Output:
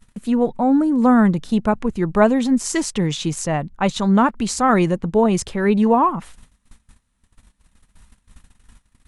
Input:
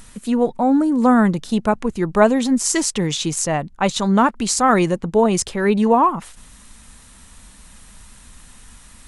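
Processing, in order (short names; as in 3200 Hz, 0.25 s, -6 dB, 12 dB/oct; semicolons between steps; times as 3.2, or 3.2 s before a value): gate -40 dBFS, range -24 dB; tone controls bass +4 dB, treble -5 dB; gain -1.5 dB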